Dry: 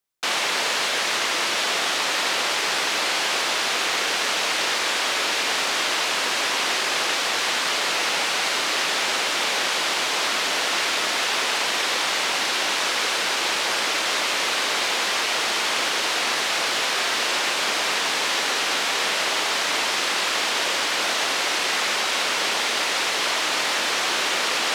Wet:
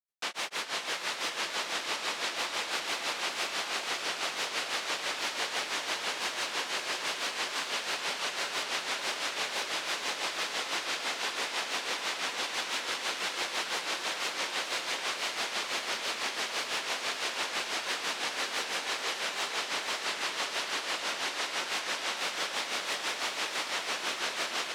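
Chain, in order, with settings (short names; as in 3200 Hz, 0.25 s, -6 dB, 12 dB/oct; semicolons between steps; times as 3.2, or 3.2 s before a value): grains 0.171 s, grains 6/s, pitch spread up and down by 0 st; on a send: diffused feedback echo 0.51 s, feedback 67%, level -4.5 dB; on the sum: gain -8.5 dB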